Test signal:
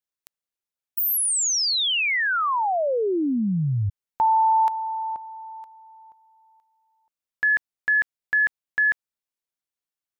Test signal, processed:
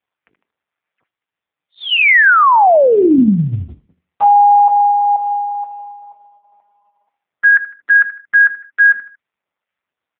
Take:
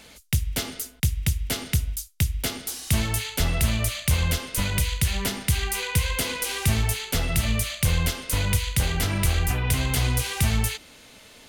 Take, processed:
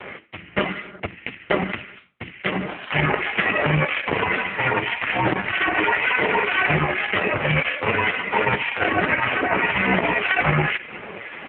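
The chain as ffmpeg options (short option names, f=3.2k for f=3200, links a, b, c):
-filter_complex "[0:a]lowshelf=f=380:g=-5.5,bandreject=f=50:t=h:w=6,bandreject=f=100:t=h:w=6,bandreject=f=150:t=h:w=6,bandreject=f=200:t=h:w=6,bandreject=f=250:t=h:w=6,bandreject=f=300:t=h:w=6,bandreject=f=350:t=h:w=6,bandreject=f=400:t=h:w=6,bandreject=f=450:t=h:w=6,bandreject=f=500:t=h:w=6,asplit=2[a][b];[b]acompressor=threshold=-35dB:ratio=10:attack=0.38:release=401:knee=1:detection=peak,volume=1.5dB[c];[a][c]amix=inputs=2:normalize=0,aecho=1:1:77|154|231:0.106|0.0339|0.0108,aeval=exprs='(mod(5.31*val(0)+1,2)-1)/5.31':c=same,acrossover=split=1300[d][e];[d]aeval=exprs='val(0)*(1-0.5/2+0.5/2*cos(2*PI*1.9*n/s))':c=same[f];[e]aeval=exprs='val(0)*(1-0.5/2-0.5/2*cos(2*PI*1.9*n/s))':c=same[g];[f][g]amix=inputs=2:normalize=0,acontrast=37,highpass=f=210:t=q:w=0.5412,highpass=f=210:t=q:w=1.307,lowpass=f=2.6k:t=q:w=0.5176,lowpass=f=2.6k:t=q:w=0.7071,lowpass=f=2.6k:t=q:w=1.932,afreqshift=-69,alimiter=level_in=16.5dB:limit=-1dB:release=50:level=0:latency=1,volume=-3dB" -ar 8000 -c:a libopencore_amrnb -b:a 4750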